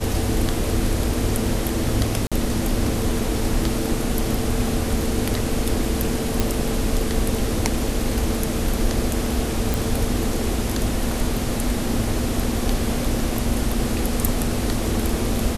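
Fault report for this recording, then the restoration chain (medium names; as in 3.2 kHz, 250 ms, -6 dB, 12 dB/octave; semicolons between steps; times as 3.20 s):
2.27–2.32 s: dropout 46 ms
6.40 s: pop
9.74 s: pop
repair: de-click; interpolate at 2.27 s, 46 ms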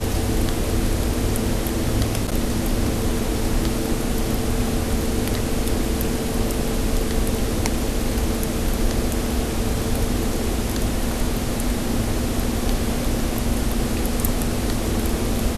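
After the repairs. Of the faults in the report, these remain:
nothing left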